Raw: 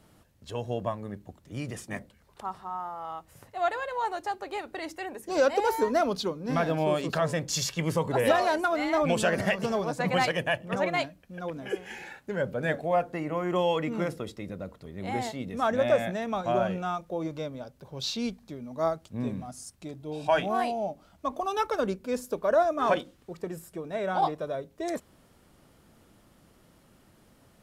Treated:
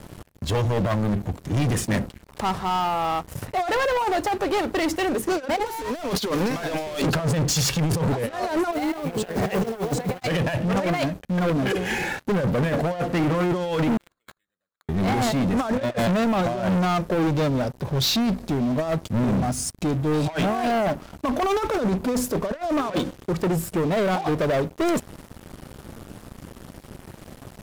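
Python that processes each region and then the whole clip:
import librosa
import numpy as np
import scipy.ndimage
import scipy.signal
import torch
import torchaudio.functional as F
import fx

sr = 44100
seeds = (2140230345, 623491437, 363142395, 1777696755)

y = fx.chain(x, sr, fx.highpass(hz=1200.0, slope=6),
    fx.leveller(passes=5), at=(5.66, 7.02))
y = fx.chain(y, sr, fx.brickwall_lowpass(high_hz=9200.0),
    fx.small_body(hz=(430.0, 740.0, 4000.0), ring_ms=35, db=11),
    fx.mod_noise(seeds[0], snr_db=21), at=(8.72, 10.23))
y = fx.chain(y, sr, fx.bandpass_q(hz=4200.0, q=12.0),
    fx.resample_bad(factor=8, down='none', up='hold'), at=(13.97, 14.89))
y = fx.over_compress(y, sr, threshold_db=-31.0, ratio=-0.5)
y = fx.low_shelf(y, sr, hz=360.0, db=8.5)
y = fx.leveller(y, sr, passes=5)
y = F.gain(torch.from_numpy(y), -7.0).numpy()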